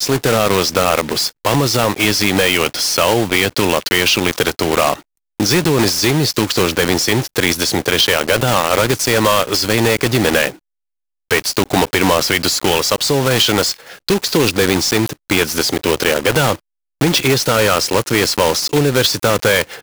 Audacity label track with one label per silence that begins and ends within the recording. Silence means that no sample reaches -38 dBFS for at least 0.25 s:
5.020000	5.400000	silence
10.570000	11.310000	silence
16.590000	17.010000	silence